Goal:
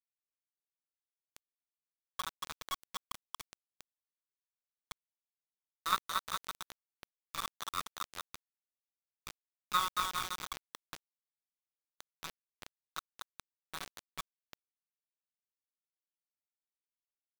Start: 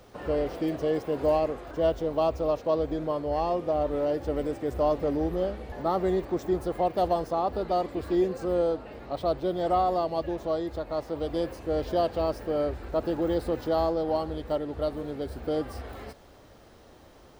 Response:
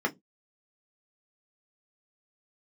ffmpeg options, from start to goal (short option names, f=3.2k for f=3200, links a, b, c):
-filter_complex "[0:a]asuperpass=centerf=1500:order=20:qfactor=1.5,asplit=2[a][b];[b]adelay=45,volume=-12dB[c];[a][c]amix=inputs=2:normalize=0,asplit=2[d][e];[e]aecho=0:1:390|780|1170|1560|1950:0.447|0.192|0.0826|0.0355|0.0153[f];[d][f]amix=inputs=2:normalize=0,aeval=exprs='0.0562*(cos(1*acos(clip(val(0)/0.0562,-1,1)))-cos(1*PI/2))+0.00447*(cos(2*acos(clip(val(0)/0.0562,-1,1)))-cos(2*PI/2))+0.0178*(cos(3*acos(clip(val(0)/0.0562,-1,1)))-cos(3*PI/2))+0.00112*(cos(8*acos(clip(val(0)/0.0562,-1,1)))-cos(8*PI/2))':c=same,asplit=2[g][h];[h]aecho=0:1:230|414|561.2|679|773.2:0.631|0.398|0.251|0.158|0.1[i];[g][i]amix=inputs=2:normalize=0,dynaudnorm=f=520:g=7:m=9dB,acrusher=bits=5:mix=0:aa=0.000001,volume=1dB"